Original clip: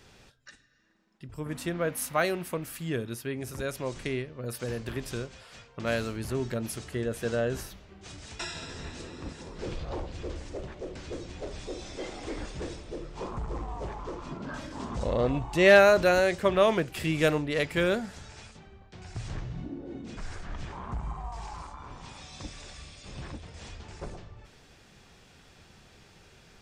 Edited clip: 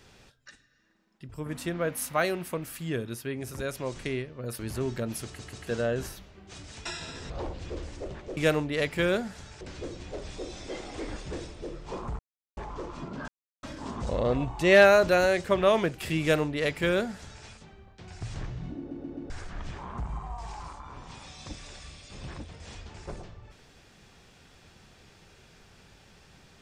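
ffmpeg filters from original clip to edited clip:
ffmpeg -i in.wav -filter_complex "[0:a]asplit=15[link_01][link_02][link_03][link_04][link_05][link_06][link_07][link_08][link_09][link_10][link_11][link_12][link_13][link_14][link_15];[link_01]atrim=end=4.592[link_16];[link_02]atrim=start=6.128:end=6.932[link_17];[link_03]atrim=start=6.788:end=6.932[link_18];[link_04]atrim=start=6.788:end=6.932[link_19];[link_05]atrim=start=7.208:end=8.842[link_20];[link_06]atrim=start=9.828:end=10.902[link_21];[link_07]atrim=start=17.148:end=18.392[link_22];[link_08]atrim=start=10.898:end=13.48,asetpts=PTS-STARTPTS,afade=type=out:start_time=2.578:duration=0.004:curve=hsin[link_23];[link_09]atrim=start=13.48:end=13.86,asetpts=PTS-STARTPTS,volume=0[link_24];[link_10]atrim=start=13.86:end=14.57,asetpts=PTS-STARTPTS,afade=type=in:duration=0.004:curve=hsin,afade=type=out:start_time=0.706:duration=0.004:curve=hsin,apad=pad_dur=0.35[link_25];[link_11]atrim=start=14.57:end=19.852,asetpts=PTS-STARTPTS,afade=type=in:duration=0.004:curve=hsin[link_26];[link_12]atrim=start=19.718:end=19.852[link_27];[link_13]atrim=start=19.718:end=19.852[link_28];[link_14]atrim=start=19.718:end=19.852[link_29];[link_15]atrim=start=20.238[link_30];[link_16][link_17]acrossfade=duration=0.004:curve1=hsin:curve2=hsin[link_31];[link_31][link_18]acrossfade=duration=0.004:curve1=hsin:curve2=hsin[link_32];[link_32][link_19]acrossfade=duration=0.004:curve1=hsin:curve2=hsin[link_33];[link_33][link_20]acrossfade=duration=0.004:curve1=hsin:curve2=hsin[link_34];[link_34][link_21]acrossfade=duration=0.004:curve1=hsin:curve2=hsin[link_35];[link_35][link_22]acrossfade=duration=0.004:curve1=hsin:curve2=hsin[link_36];[link_23][link_24][link_25][link_26]concat=n=4:v=0:a=1[link_37];[link_36][link_37]acrossfade=duration=0.004:curve1=hsin:curve2=hsin[link_38];[link_38][link_27]acrossfade=duration=0.004:curve1=hsin:curve2=hsin[link_39];[link_39][link_28]acrossfade=duration=0.004:curve1=hsin:curve2=hsin[link_40];[link_40][link_29]acrossfade=duration=0.004:curve1=hsin:curve2=hsin[link_41];[link_41][link_30]acrossfade=duration=0.004:curve1=hsin:curve2=hsin" out.wav

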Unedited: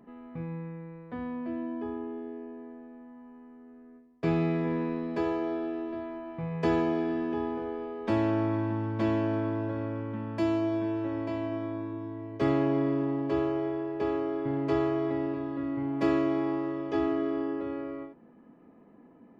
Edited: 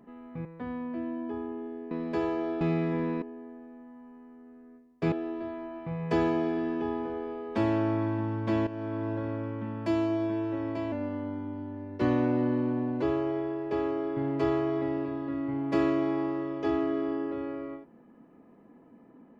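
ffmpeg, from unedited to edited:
ffmpeg -i in.wav -filter_complex "[0:a]asplit=9[link_01][link_02][link_03][link_04][link_05][link_06][link_07][link_08][link_09];[link_01]atrim=end=0.452[link_10];[link_02]atrim=start=0.968:end=2.432[link_11];[link_03]atrim=start=4.938:end=5.642[link_12];[link_04]atrim=start=4.328:end=4.942[link_13];[link_05]atrim=start=2.428:end=4.332[link_14];[link_06]atrim=start=5.638:end=9.19,asetpts=PTS-STARTPTS,afade=type=out:start_time=3.548:duration=0.004:curve=hsin:silence=0.237137[link_15];[link_07]atrim=start=9.19:end=11.444,asetpts=PTS-STARTPTS,afade=type=in:duration=0.44:silence=0.237137[link_16];[link_08]atrim=start=11.44:end=13.31,asetpts=PTS-STARTPTS,asetrate=39249,aresample=44100[link_17];[link_09]atrim=start=13.306[link_18];[link_10][link_11]acrossfade=duration=0.004:curve1=hsin:curve2=hsin[link_19];[link_19][link_12]acrossfade=duration=0.004:curve1=hsin:curve2=hsin[link_20];[link_20][link_13]acrossfade=duration=0.004:curve1=hsin:curve2=hsin[link_21];[link_21][link_14]acrossfade=duration=0.004:curve1=hsin:curve2=hsin[link_22];[link_15][link_16]concat=n=2:v=0:a=1[link_23];[link_22][link_23]acrossfade=duration=0.004:curve1=hsin:curve2=hsin[link_24];[link_24][link_17]acrossfade=duration=0.004:curve1=hsin:curve2=hsin[link_25];[link_25][link_18]acrossfade=duration=0.004:curve1=hsin:curve2=hsin" out.wav

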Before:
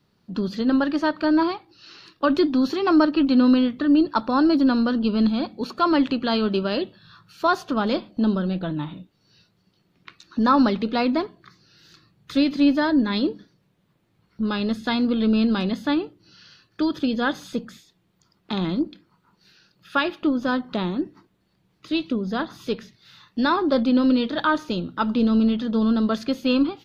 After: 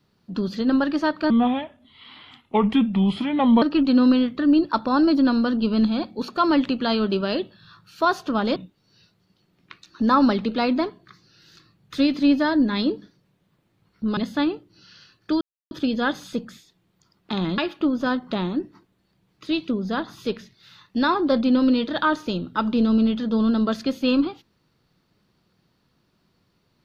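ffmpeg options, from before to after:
ffmpeg -i in.wav -filter_complex "[0:a]asplit=7[link_01][link_02][link_03][link_04][link_05][link_06][link_07];[link_01]atrim=end=1.304[link_08];[link_02]atrim=start=1.3:end=3.04,asetpts=PTS-STARTPTS,asetrate=33075,aresample=44100[link_09];[link_03]atrim=start=3.036:end=7.982[link_10];[link_04]atrim=start=8.928:end=14.542[link_11];[link_05]atrim=start=15.668:end=16.91,asetpts=PTS-STARTPTS,afade=type=out:start_time=1.238:duration=0.004:curve=hsin,apad=pad_dur=0.3[link_12];[link_06]atrim=start=16.91:end=18.782,asetpts=PTS-STARTPTS,afade=type=in:duration=0.004:curve=hsin[link_13];[link_07]atrim=start=19.998[link_14];[link_08][link_09]acrossfade=duration=0.004:curve1=hsin:curve2=hsin[link_15];[link_15][link_10]acrossfade=duration=0.004:curve1=hsin:curve2=hsin[link_16];[link_16][link_11]acrossfade=duration=0.004:curve1=hsin:curve2=hsin[link_17];[link_12][link_13]concat=n=2:v=0:a=1[link_18];[link_17][link_18]acrossfade=duration=0.004:curve1=hsin:curve2=hsin[link_19];[link_19][link_14]acrossfade=duration=0.004:curve1=hsin:curve2=hsin" out.wav

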